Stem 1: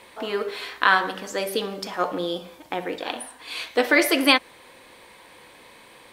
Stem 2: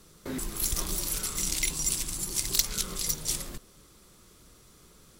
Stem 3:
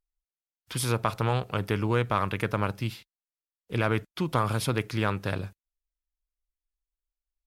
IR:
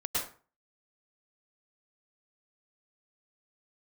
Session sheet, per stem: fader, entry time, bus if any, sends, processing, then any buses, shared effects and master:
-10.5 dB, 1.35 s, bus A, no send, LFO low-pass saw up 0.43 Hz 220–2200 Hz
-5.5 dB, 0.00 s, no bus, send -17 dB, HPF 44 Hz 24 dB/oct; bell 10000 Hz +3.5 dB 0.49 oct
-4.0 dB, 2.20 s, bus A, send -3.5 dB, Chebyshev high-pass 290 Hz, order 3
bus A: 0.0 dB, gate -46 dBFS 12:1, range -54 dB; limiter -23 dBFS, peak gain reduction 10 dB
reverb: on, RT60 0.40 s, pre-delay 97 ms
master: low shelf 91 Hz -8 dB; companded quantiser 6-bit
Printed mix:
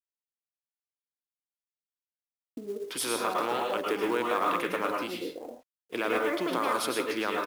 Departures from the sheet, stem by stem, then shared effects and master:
stem 1: entry 1.35 s -> 2.35 s; stem 2: muted; master: missing low shelf 91 Hz -8 dB

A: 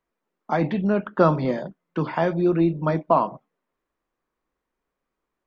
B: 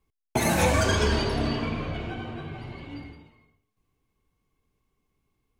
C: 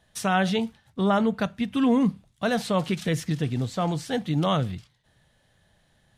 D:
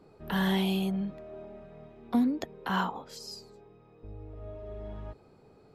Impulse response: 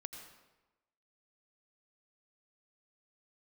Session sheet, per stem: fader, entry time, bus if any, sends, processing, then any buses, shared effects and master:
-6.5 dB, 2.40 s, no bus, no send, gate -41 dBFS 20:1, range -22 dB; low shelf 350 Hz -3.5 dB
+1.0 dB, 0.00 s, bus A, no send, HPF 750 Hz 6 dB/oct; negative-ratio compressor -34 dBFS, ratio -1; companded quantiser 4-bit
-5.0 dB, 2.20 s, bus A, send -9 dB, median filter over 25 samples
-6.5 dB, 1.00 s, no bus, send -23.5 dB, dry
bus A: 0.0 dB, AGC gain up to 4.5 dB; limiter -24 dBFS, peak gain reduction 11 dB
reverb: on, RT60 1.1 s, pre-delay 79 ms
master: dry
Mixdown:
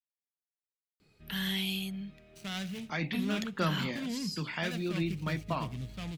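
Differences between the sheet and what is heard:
stem B: muted; stem C -5.0 dB -> -17.0 dB; master: extra EQ curve 160 Hz 0 dB, 470 Hz -10 dB, 950 Hz -11 dB, 2300 Hz +9 dB

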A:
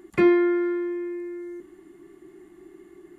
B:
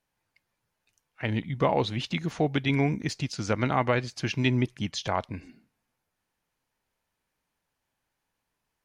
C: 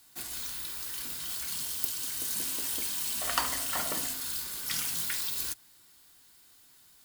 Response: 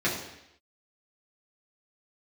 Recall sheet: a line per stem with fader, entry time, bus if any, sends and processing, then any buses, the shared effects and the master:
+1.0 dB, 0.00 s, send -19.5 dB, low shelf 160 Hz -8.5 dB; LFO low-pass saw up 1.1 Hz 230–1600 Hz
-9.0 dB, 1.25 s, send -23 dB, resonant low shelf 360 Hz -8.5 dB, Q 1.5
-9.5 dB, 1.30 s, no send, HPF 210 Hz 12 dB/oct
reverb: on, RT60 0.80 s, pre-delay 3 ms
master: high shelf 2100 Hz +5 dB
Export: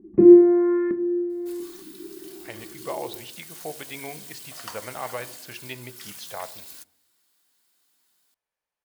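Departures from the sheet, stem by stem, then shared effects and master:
stem A: missing low shelf 160 Hz -8.5 dB; master: missing high shelf 2100 Hz +5 dB

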